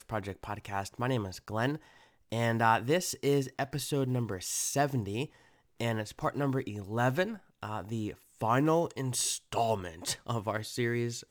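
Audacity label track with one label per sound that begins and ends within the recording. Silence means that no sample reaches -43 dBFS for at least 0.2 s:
2.320000	5.260000	sound
5.800000	7.370000	sound
7.630000	8.140000	sound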